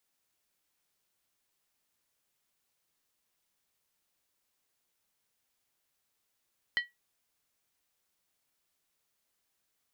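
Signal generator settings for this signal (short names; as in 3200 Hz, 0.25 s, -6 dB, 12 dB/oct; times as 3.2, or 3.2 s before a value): skin hit, lowest mode 1930 Hz, decay 0.18 s, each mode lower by 7 dB, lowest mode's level -22.5 dB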